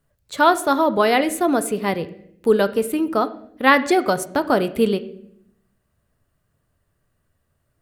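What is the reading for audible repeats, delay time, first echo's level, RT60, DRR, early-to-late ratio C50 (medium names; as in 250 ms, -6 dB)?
no echo, no echo, no echo, 0.70 s, 11.0 dB, 15.5 dB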